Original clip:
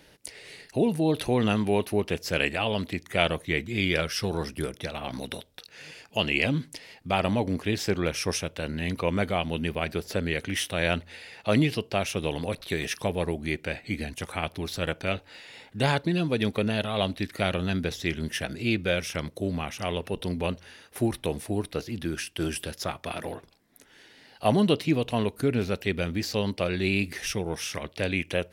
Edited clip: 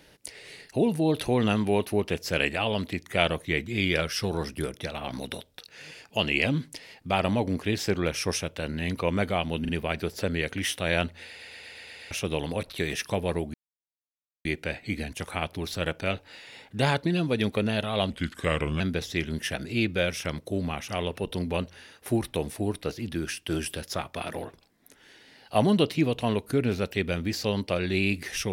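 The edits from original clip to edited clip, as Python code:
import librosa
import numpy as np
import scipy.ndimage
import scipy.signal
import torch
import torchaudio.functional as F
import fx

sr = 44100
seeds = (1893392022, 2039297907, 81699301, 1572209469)

y = fx.edit(x, sr, fx.stutter(start_s=9.61, slice_s=0.04, count=3),
    fx.stutter_over(start_s=11.19, slice_s=0.12, count=7),
    fx.insert_silence(at_s=13.46, length_s=0.91),
    fx.speed_span(start_s=17.11, length_s=0.59, speed=0.84), tone=tone)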